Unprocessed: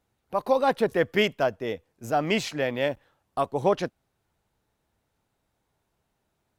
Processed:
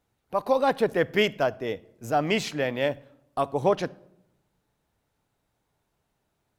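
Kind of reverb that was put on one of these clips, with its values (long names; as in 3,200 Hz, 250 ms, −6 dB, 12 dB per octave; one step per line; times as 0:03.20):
rectangular room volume 2,400 cubic metres, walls furnished, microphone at 0.36 metres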